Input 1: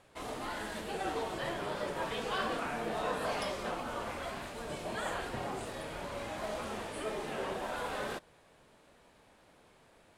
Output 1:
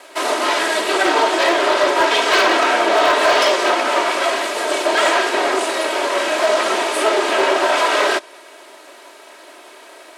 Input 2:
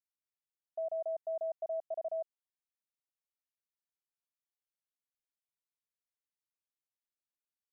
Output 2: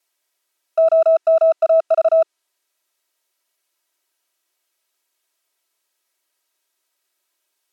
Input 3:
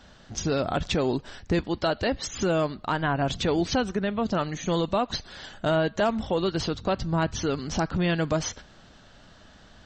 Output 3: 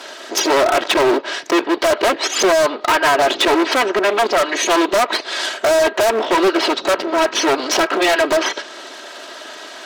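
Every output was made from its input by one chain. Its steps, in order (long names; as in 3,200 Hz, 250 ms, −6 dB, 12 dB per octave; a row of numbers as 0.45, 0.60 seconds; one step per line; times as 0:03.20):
lower of the sound and its delayed copy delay 3.1 ms
treble cut that deepens with the level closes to 2,500 Hz, closed at −26.5 dBFS
hard clipping −31.5 dBFS
Chebyshev high-pass filter 380 Hz, order 3
wave folding −30 dBFS
loudness normalisation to −16 LKFS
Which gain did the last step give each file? +24.5, +24.0, +22.5 decibels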